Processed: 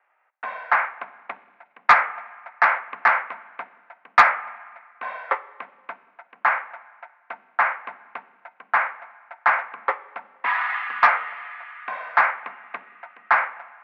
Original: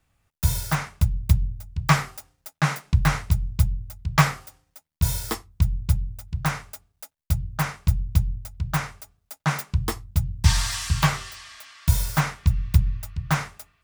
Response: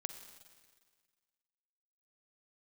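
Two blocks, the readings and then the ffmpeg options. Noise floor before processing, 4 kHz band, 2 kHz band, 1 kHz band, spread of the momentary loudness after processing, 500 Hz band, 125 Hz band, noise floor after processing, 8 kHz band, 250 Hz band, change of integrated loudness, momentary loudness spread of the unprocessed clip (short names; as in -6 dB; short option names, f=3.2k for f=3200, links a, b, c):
-75 dBFS, -9.0 dB, +9.5 dB, +9.5 dB, 22 LU, +4.5 dB, under -35 dB, -63 dBFS, under -20 dB, under -20 dB, +3.0 dB, 16 LU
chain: -filter_complex "[0:a]highpass=f=530:t=q:w=0.5412,highpass=f=530:t=q:w=1.307,lowpass=f=2.1k:t=q:w=0.5176,lowpass=f=2.1k:t=q:w=0.7071,lowpass=f=2.1k:t=q:w=1.932,afreqshift=80,asplit=2[a][b];[1:a]atrim=start_sample=2205,lowshelf=f=200:g=9[c];[b][c]afir=irnorm=-1:irlink=0,volume=-4dB[d];[a][d]amix=inputs=2:normalize=0,acontrast=84"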